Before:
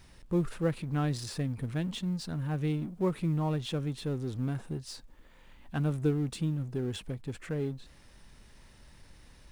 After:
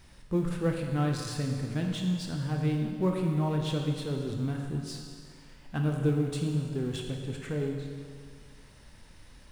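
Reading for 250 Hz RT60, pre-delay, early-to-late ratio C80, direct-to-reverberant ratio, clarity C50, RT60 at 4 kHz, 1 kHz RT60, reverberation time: 2.0 s, 21 ms, 4.5 dB, 1.5 dB, 3.0 dB, 1.9 s, 2.0 s, 2.0 s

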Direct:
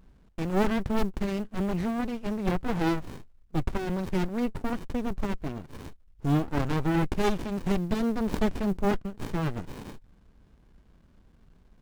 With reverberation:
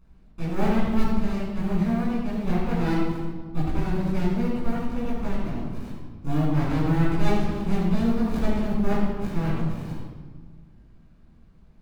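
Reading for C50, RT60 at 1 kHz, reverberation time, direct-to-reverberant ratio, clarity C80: −0.5 dB, 1.4 s, 1.5 s, −8.5 dB, 1.5 dB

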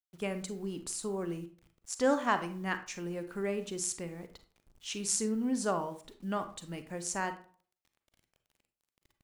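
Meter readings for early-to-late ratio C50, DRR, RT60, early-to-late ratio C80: 11.5 dB, 9.0 dB, 0.45 s, 17.0 dB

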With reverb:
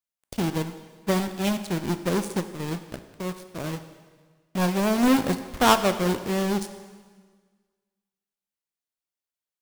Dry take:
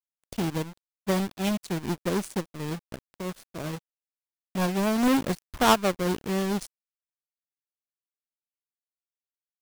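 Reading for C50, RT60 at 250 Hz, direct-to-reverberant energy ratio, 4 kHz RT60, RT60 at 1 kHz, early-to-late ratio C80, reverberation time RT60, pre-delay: 11.5 dB, 1.6 s, 9.5 dB, 1.5 s, 1.5 s, 12.5 dB, 1.6 s, 5 ms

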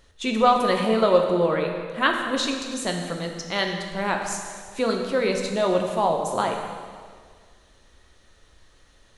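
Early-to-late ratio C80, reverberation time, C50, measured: 5.5 dB, 1.8 s, 4.5 dB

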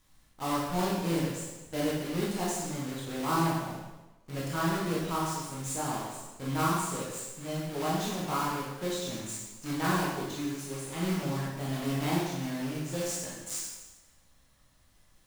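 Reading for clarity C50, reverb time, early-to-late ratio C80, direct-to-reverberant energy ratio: 0.0 dB, 1.1 s, 2.5 dB, −6.5 dB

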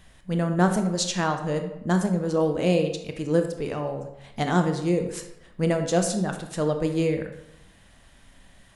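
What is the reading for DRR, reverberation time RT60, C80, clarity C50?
5.5 dB, 0.85 s, 10.5 dB, 7.5 dB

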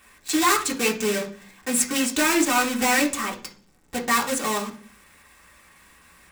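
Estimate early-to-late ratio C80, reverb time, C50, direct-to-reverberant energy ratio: 18.0 dB, 0.45 s, 12.0 dB, −1.0 dB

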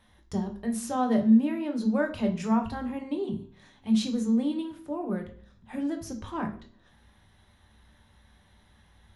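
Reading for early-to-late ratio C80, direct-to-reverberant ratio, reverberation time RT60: 15.5 dB, 3.0 dB, 0.55 s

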